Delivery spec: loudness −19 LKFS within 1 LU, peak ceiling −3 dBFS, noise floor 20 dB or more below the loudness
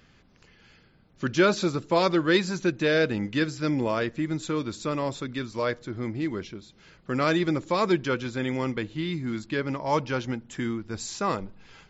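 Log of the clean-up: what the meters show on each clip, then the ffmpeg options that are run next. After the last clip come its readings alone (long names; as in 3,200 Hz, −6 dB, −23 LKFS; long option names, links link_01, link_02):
integrated loudness −27.5 LKFS; sample peak −9.0 dBFS; target loudness −19.0 LKFS
→ -af "volume=8.5dB,alimiter=limit=-3dB:level=0:latency=1"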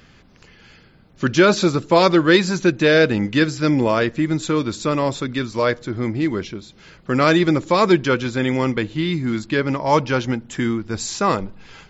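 integrated loudness −19.0 LKFS; sample peak −3.0 dBFS; background noise floor −50 dBFS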